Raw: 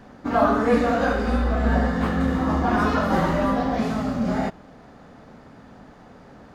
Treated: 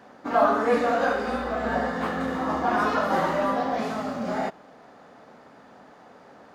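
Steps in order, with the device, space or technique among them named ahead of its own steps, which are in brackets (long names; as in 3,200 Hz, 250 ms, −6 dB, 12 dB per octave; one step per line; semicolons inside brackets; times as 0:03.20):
filter by subtraction (in parallel: low-pass filter 640 Hz 12 dB per octave + polarity inversion)
on the sum: level −2 dB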